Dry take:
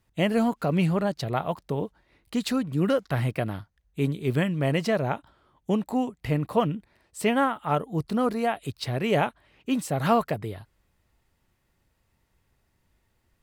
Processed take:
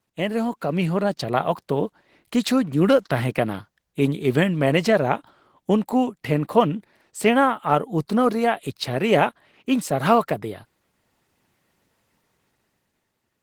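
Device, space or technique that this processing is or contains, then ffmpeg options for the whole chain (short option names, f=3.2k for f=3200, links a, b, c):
video call: -af "highpass=170,dynaudnorm=f=150:g=13:m=8dB" -ar 48000 -c:a libopus -b:a 16k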